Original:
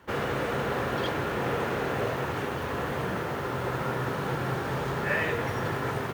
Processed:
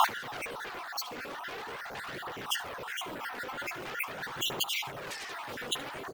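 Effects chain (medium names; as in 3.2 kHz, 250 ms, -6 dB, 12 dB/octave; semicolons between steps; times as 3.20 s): random holes in the spectrogram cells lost 51%; in parallel at +0.5 dB: sine folder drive 17 dB, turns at -14 dBFS; on the sum: bass shelf 130 Hz -9 dB; peak limiter -22 dBFS, peak gain reduction 13 dB; compressor with a negative ratio -37 dBFS, ratio -0.5; bass shelf 260 Hz -5.5 dB; on a send: delay 73 ms -19.5 dB; on the sum: phaser 0.44 Hz, delay 4.2 ms, feedback 38%; trim +3 dB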